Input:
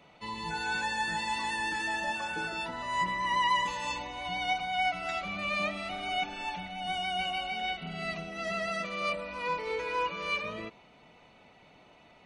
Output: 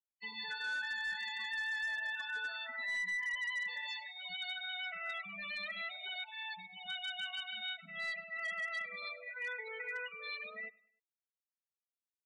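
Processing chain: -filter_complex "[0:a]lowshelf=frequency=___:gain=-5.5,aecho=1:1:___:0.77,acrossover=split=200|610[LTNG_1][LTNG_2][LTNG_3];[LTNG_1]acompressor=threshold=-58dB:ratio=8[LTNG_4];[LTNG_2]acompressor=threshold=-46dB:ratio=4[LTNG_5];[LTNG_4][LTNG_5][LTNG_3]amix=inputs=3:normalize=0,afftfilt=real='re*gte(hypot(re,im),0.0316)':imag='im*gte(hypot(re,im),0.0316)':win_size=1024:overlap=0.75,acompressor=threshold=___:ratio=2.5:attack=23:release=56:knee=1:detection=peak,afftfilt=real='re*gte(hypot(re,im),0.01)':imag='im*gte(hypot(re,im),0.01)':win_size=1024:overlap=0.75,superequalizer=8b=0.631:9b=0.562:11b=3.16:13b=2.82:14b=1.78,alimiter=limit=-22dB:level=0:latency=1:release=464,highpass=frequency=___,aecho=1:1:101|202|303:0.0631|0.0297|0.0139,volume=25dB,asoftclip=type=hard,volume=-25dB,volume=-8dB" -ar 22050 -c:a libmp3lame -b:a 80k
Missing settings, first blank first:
410, 4.6, -37dB, 53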